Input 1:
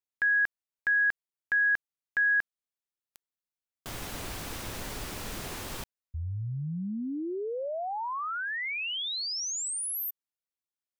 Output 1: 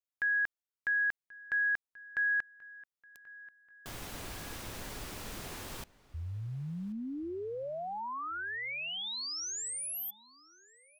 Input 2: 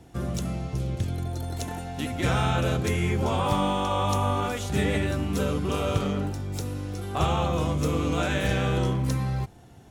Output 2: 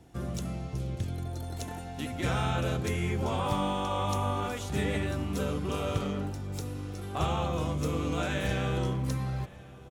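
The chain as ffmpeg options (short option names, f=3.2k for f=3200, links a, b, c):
-filter_complex "[0:a]asplit=2[a][b];[b]adelay=1084,lowpass=f=4.3k:p=1,volume=-20.5dB,asplit=2[c][d];[d]adelay=1084,lowpass=f=4.3k:p=1,volume=0.47,asplit=2[e][f];[f]adelay=1084,lowpass=f=4.3k:p=1,volume=0.47[g];[a][c][e][g]amix=inputs=4:normalize=0,volume=-5dB"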